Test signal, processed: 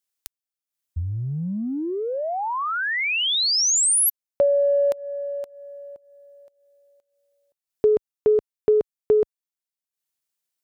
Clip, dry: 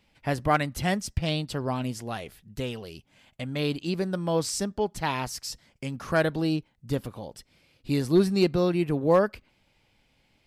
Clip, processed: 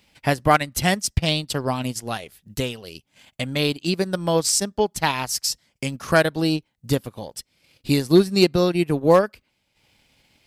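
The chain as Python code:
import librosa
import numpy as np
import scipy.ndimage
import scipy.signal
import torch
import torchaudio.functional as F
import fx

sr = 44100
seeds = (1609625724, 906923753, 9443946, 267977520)

y = fx.highpass(x, sr, hz=43.0, slope=6)
y = fx.high_shelf(y, sr, hz=3400.0, db=8.5)
y = fx.transient(y, sr, attack_db=4, sustain_db=-10)
y = y * 10.0 ** (4.0 / 20.0)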